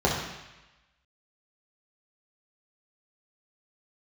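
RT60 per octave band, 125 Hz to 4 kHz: 1.0 s, 0.95 s, 0.95 s, 1.1 s, 1.2 s, 1.1 s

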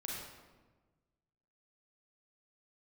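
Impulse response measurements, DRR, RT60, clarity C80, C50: -3.5 dB, 1.3 s, 1.5 dB, -1.0 dB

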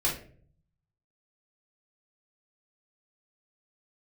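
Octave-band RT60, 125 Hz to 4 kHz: 1.1 s, 0.70 s, 0.60 s, 0.40 s, 0.40 s, 0.30 s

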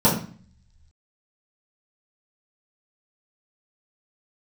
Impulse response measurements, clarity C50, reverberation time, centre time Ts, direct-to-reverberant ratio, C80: 6.5 dB, 0.45 s, 30 ms, -10.0 dB, 11.0 dB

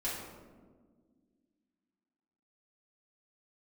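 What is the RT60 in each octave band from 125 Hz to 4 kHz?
2.1 s, 2.8 s, 1.9 s, 1.3 s, 0.95 s, 0.70 s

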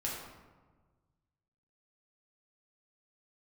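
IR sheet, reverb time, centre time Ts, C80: 1.4 s, 68 ms, 3.5 dB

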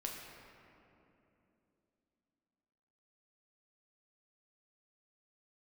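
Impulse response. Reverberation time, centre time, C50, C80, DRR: 3.0 s, 101 ms, 2.0 dB, 3.0 dB, -1.5 dB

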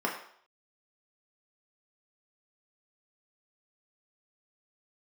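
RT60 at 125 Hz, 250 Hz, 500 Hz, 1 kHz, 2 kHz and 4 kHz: 0.35 s, 0.50 s, 0.60 s, 0.60 s, 0.60 s, 0.55 s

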